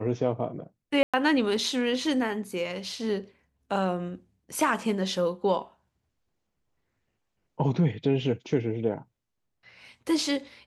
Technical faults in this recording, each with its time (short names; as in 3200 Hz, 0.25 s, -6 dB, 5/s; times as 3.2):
1.03–1.14 gap 0.106 s